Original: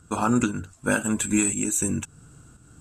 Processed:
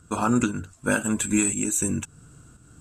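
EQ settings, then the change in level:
notch filter 820 Hz, Q 15
0.0 dB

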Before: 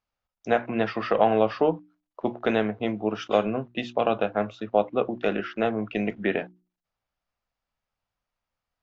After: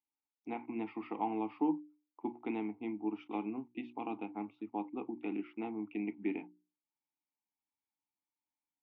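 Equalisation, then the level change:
formant filter u
bass and treble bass +7 dB, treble −9 dB
low-shelf EQ 190 Hz −9.5 dB
0.0 dB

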